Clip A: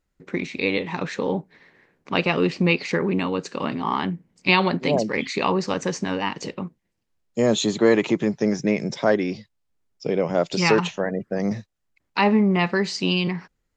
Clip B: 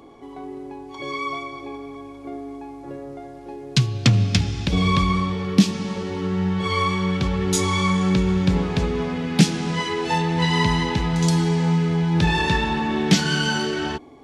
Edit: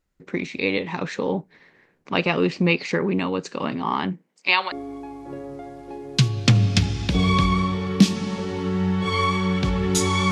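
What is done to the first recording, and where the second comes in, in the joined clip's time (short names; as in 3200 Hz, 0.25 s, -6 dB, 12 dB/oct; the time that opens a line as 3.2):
clip A
4.12–4.72 HPF 230 Hz -> 1100 Hz
4.72 switch to clip B from 2.3 s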